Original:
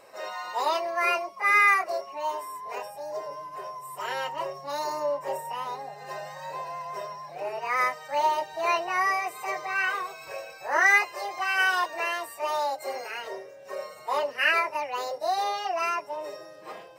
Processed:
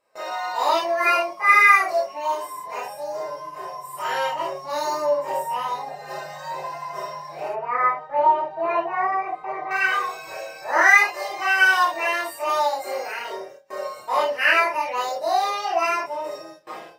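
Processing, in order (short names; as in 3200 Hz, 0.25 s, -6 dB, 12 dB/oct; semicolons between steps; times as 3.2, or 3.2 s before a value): 7.48–9.71 LPF 1300 Hz 12 dB/oct; gate with hold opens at -35 dBFS; non-linear reverb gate 90 ms flat, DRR -4 dB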